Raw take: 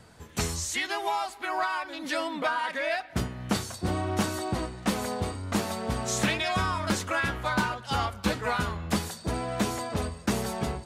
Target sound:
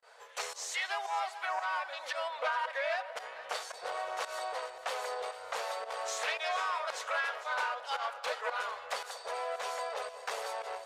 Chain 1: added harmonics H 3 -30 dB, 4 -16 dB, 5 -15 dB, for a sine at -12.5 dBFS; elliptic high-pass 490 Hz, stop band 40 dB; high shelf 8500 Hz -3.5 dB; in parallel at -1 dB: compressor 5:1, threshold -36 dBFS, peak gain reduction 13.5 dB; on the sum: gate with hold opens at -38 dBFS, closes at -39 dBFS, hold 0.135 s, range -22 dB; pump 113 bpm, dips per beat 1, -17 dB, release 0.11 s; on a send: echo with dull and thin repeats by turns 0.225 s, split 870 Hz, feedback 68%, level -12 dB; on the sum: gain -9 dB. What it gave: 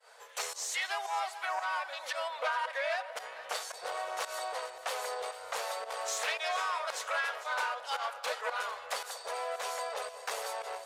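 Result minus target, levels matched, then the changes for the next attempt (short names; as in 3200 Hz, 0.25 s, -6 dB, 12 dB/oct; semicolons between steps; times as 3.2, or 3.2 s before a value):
8000 Hz band +3.5 dB
change: high shelf 8500 Hz -15 dB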